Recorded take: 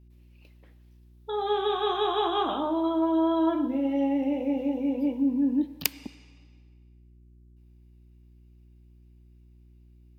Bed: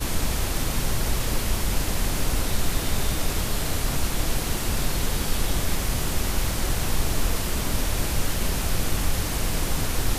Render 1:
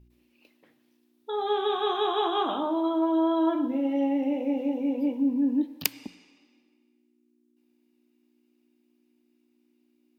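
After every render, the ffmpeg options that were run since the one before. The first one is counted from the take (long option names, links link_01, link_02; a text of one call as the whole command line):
ffmpeg -i in.wav -af "bandreject=frequency=60:width_type=h:width=4,bandreject=frequency=120:width_type=h:width=4,bandreject=frequency=180:width_type=h:width=4" out.wav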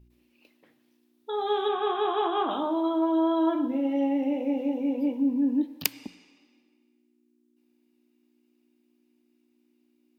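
ffmpeg -i in.wav -filter_complex "[0:a]asettb=1/sr,asplit=3[link_01][link_02][link_03];[link_01]atrim=end=1.684[link_04];[link_02]atrim=start=1.68:end=2.51,asetpts=PTS-STARTPTS,afade=type=in:duration=0.004:curve=qsin,afade=type=out:start_time=0.826:duration=0.004:curve=qsin,lowpass=frequency=3000:width=0.5412,lowpass=frequency=3000:width=1.3066[link_05];[link_03]atrim=start=2.506[link_06];[link_04][link_05]acrossfade=duration=0.004:curve1=hsin:curve2=qsin[link_07];[link_07][link_06]acrossfade=duration=0.004:curve1=qsin:curve2=hsin" out.wav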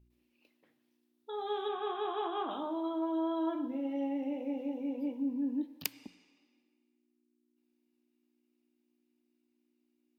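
ffmpeg -i in.wav -af "volume=-9dB" out.wav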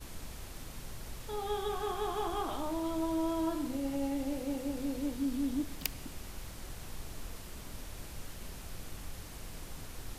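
ffmpeg -i in.wav -i bed.wav -filter_complex "[1:a]volume=-20dB[link_01];[0:a][link_01]amix=inputs=2:normalize=0" out.wav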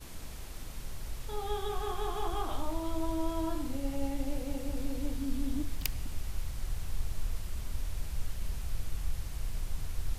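ffmpeg -i in.wav -af "bandreject=frequency=47.37:width_type=h:width=4,bandreject=frequency=94.74:width_type=h:width=4,bandreject=frequency=142.11:width_type=h:width=4,bandreject=frequency=189.48:width_type=h:width=4,bandreject=frequency=236.85:width_type=h:width=4,bandreject=frequency=284.22:width_type=h:width=4,bandreject=frequency=331.59:width_type=h:width=4,bandreject=frequency=378.96:width_type=h:width=4,bandreject=frequency=426.33:width_type=h:width=4,bandreject=frequency=473.7:width_type=h:width=4,bandreject=frequency=521.07:width_type=h:width=4,bandreject=frequency=568.44:width_type=h:width=4,bandreject=frequency=615.81:width_type=h:width=4,bandreject=frequency=663.18:width_type=h:width=4,bandreject=frequency=710.55:width_type=h:width=4,bandreject=frequency=757.92:width_type=h:width=4,bandreject=frequency=805.29:width_type=h:width=4,bandreject=frequency=852.66:width_type=h:width=4,bandreject=frequency=900.03:width_type=h:width=4,bandreject=frequency=947.4:width_type=h:width=4,bandreject=frequency=994.77:width_type=h:width=4,bandreject=frequency=1042.14:width_type=h:width=4,bandreject=frequency=1089.51:width_type=h:width=4,bandreject=frequency=1136.88:width_type=h:width=4,bandreject=frequency=1184.25:width_type=h:width=4,bandreject=frequency=1231.62:width_type=h:width=4,bandreject=frequency=1278.99:width_type=h:width=4,bandreject=frequency=1326.36:width_type=h:width=4,bandreject=frequency=1373.73:width_type=h:width=4,bandreject=frequency=1421.1:width_type=h:width=4,bandreject=frequency=1468.47:width_type=h:width=4,bandreject=frequency=1515.84:width_type=h:width=4,bandreject=frequency=1563.21:width_type=h:width=4,bandreject=frequency=1610.58:width_type=h:width=4,bandreject=frequency=1657.95:width_type=h:width=4,bandreject=frequency=1705.32:width_type=h:width=4,bandreject=frequency=1752.69:width_type=h:width=4,bandreject=frequency=1800.06:width_type=h:width=4,bandreject=frequency=1847.43:width_type=h:width=4,bandreject=frequency=1894.8:width_type=h:width=4,asubboost=boost=4:cutoff=120" out.wav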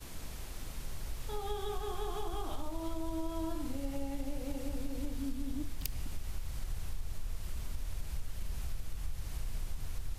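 ffmpeg -i in.wav -filter_complex "[0:a]acrossover=split=260|670|2800[link_01][link_02][link_03][link_04];[link_03]alimiter=level_in=14.5dB:limit=-24dB:level=0:latency=1:release=67,volume=-14.5dB[link_05];[link_01][link_02][link_05][link_04]amix=inputs=4:normalize=0,acompressor=threshold=-31dB:ratio=6" out.wav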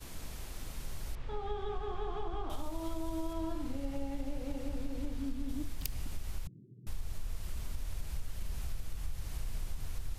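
ffmpeg -i in.wav -filter_complex "[0:a]asettb=1/sr,asplit=3[link_01][link_02][link_03];[link_01]atrim=end=1.154[link_04];[link_02]atrim=start=1.15:end=2.5,asetpts=PTS-STARTPTS,afade=type=in:duration=0.004:curve=qsin,afade=type=out:start_time=1.346:duration=0.004:curve=qsin,lowpass=2600[link_05];[link_03]atrim=start=2.496[link_06];[link_04][link_05]acrossfade=duration=0.004:curve1=hsin:curve2=qsin[link_07];[link_07][link_06]acrossfade=duration=0.004:curve1=qsin:curve2=hsin,asettb=1/sr,asplit=3[link_08][link_09][link_10];[link_08]atrim=end=3.334[link_11];[link_09]atrim=start=3.33:end=5.49,asetpts=PTS-STARTPTS,afade=type=in:duration=0.004:curve=qsin,afade=type=out:start_time=2.156:duration=0.004:curve=qsin,highshelf=frequency=6000:gain=-8.5[link_12];[link_10]atrim=start=5.486[link_13];[link_11][link_12]acrossfade=duration=0.004:curve1=hsin:curve2=qsin[link_14];[link_14][link_13]acrossfade=duration=0.004:curve1=qsin:curve2=hsin,asettb=1/sr,asplit=3[link_15][link_16][link_17];[link_15]atrim=end=6.474[link_18];[link_16]atrim=start=6.47:end=6.87,asetpts=PTS-STARTPTS,afade=type=in:duration=0.004:curve=qsin,afade=type=out:start_time=0.396:duration=0.004:curve=qsin,asuperpass=centerf=220:order=12:qfactor=0.78[link_19];[link_17]atrim=start=6.866[link_20];[link_18][link_19]acrossfade=duration=0.004:curve1=hsin:curve2=qsin[link_21];[link_21][link_20]acrossfade=duration=0.004:curve1=qsin:curve2=hsin" out.wav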